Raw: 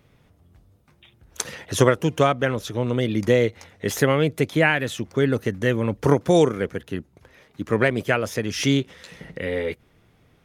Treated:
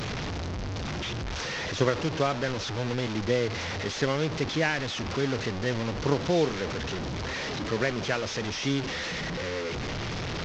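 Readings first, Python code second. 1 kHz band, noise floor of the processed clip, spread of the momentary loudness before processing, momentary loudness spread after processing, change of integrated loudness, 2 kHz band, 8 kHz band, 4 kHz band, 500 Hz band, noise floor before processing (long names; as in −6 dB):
−5.0 dB, −33 dBFS, 13 LU, 6 LU, −7.0 dB, −5.0 dB, −5.5 dB, 0.0 dB, −7.5 dB, −60 dBFS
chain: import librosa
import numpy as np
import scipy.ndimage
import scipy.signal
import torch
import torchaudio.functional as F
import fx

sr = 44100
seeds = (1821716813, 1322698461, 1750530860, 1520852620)

y = fx.delta_mod(x, sr, bps=32000, step_db=-18.5)
y = y * librosa.db_to_amplitude(-8.0)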